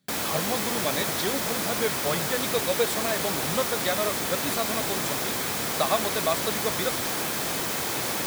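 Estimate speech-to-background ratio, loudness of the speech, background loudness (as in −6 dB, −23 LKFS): −4.0 dB, −30.5 LKFS, −26.5 LKFS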